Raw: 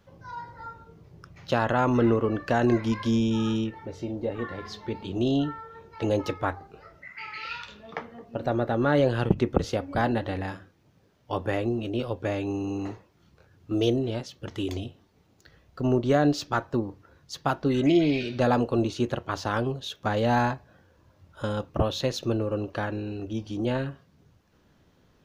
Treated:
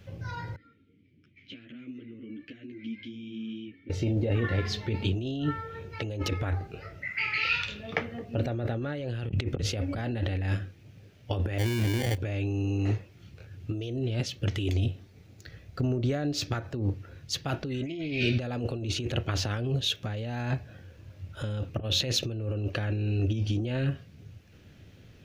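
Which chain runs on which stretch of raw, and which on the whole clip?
0:00.56–0:03.90: downward compressor 8 to 1, threshold −29 dBFS + formant filter i + string-ensemble chorus
0:11.58–0:12.18: output level in coarse steps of 18 dB + sample-rate reduction 1,300 Hz
0:14.73–0:16.72: parametric band 2,900 Hz −5 dB 0.34 octaves + downward compressor, threshold −32 dBFS
whole clip: graphic EQ with 15 bands 100 Hz +11 dB, 1,000 Hz −11 dB, 2,500 Hz +7 dB; compressor whose output falls as the input rises −30 dBFS, ratio −1; level +1 dB

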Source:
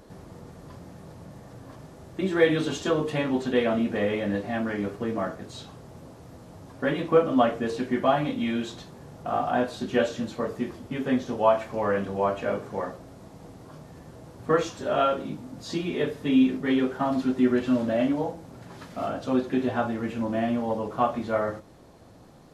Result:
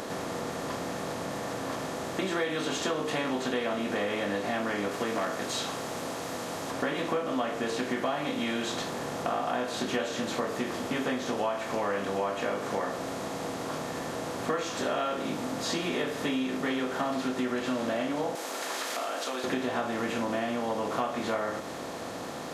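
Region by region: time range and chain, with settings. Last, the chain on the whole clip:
0:04.91–0:06.71: spectral tilt +1.5 dB per octave + hard clipping −23.5 dBFS
0:18.35–0:19.44: high-pass filter 320 Hz 24 dB per octave + spectral tilt +3.5 dB per octave + downward compressor 5 to 1, threshold −42 dBFS
whole clip: compressor on every frequency bin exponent 0.6; spectral tilt +2 dB per octave; downward compressor, threshold −27 dBFS

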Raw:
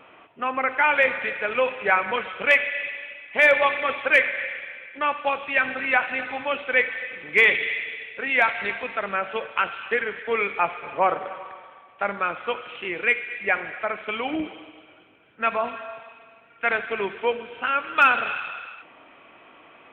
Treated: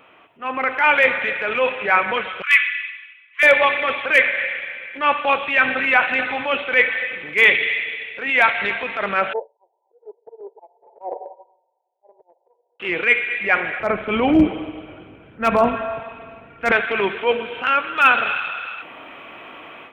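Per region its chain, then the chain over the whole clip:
0:02.42–0:03.43: linear-phase brick-wall high-pass 1,000 Hz + multiband upward and downward expander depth 70%
0:09.33–0:12.80: volume swells 213 ms + linear-phase brick-wall band-pass 340–1,000 Hz + expander for the loud parts 2.5 to 1, over −47 dBFS
0:13.80–0:16.72: spectral tilt −4 dB per octave + hard clipping −13.5 dBFS
whole clip: high-shelf EQ 4,600 Hz +8 dB; transient designer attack −8 dB, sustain 0 dB; automatic gain control gain up to 12 dB; level −1 dB

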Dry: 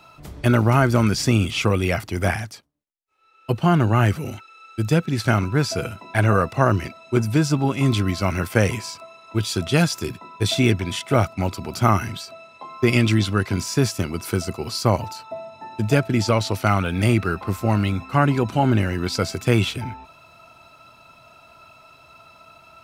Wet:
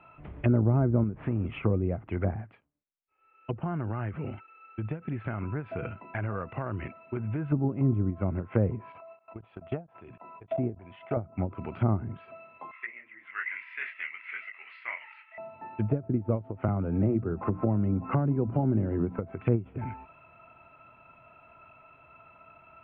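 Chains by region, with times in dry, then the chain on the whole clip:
0:01.03–0:01.45: one scale factor per block 5 bits + downward compressor 2 to 1, threshold −22 dBFS + linearly interpolated sample-rate reduction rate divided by 4×
0:03.62–0:07.52: downward compressor, threshold −22 dBFS + high-frequency loss of the air 140 metres
0:08.92–0:11.17: parametric band 700 Hz +11.5 dB + output level in coarse steps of 21 dB
0:12.71–0:15.38: mu-law and A-law mismatch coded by A + high-pass with resonance 2,000 Hz, resonance Q 11 + micro pitch shift up and down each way 58 cents
0:16.68–0:19.19: high-pass filter 74 Hz 6 dB per octave + mains-hum notches 60/120/180/240/300 Hz + multiband upward and downward compressor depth 100%
whole clip: treble cut that deepens with the level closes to 500 Hz, closed at −17.5 dBFS; Butterworth low-pass 2,800 Hz 48 dB per octave; every ending faded ahead of time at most 230 dB per second; level −5.5 dB

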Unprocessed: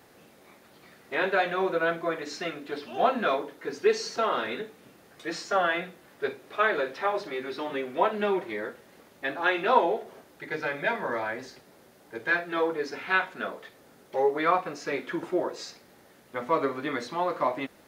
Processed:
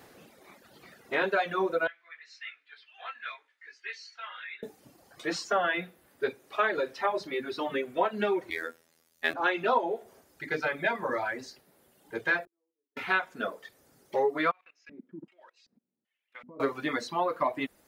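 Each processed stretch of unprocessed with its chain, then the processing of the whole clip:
0:01.87–0:04.63: four-pole ladder band-pass 2,400 Hz, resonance 40% + double-tracking delay 18 ms −3.5 dB
0:08.50–0:09.34: high-shelf EQ 2,000 Hz +9.5 dB + phases set to zero 81.9 Hz + multiband upward and downward expander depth 70%
0:12.45–0:12.97: four-pole ladder band-pass 370 Hz, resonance 45% + gate with flip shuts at −45 dBFS, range −38 dB
0:14.51–0:16.60: output level in coarse steps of 18 dB + auto-filter band-pass square 1.3 Hz 220–2,500 Hz
whole clip: reverb reduction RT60 1.8 s; downward compressor 2.5 to 1, threshold −27 dBFS; level +2.5 dB

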